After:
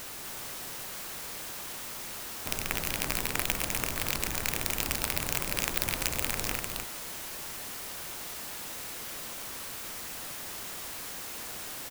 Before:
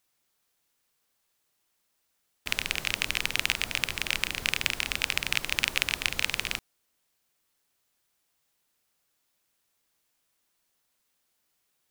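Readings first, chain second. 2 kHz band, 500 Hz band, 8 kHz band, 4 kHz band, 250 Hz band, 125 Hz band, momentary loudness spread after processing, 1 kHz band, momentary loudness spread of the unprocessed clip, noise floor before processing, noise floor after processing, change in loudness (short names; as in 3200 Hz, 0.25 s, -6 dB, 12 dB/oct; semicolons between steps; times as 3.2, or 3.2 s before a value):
-5.5 dB, +6.0 dB, +4.5 dB, -5.5 dB, +6.0 dB, +5.0 dB, 8 LU, +4.0 dB, 5 LU, -76 dBFS, -40 dBFS, -4.5 dB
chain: zero-crossing step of -28.5 dBFS; echo 0.248 s -3.5 dB; clock jitter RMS 0.079 ms; gain -5 dB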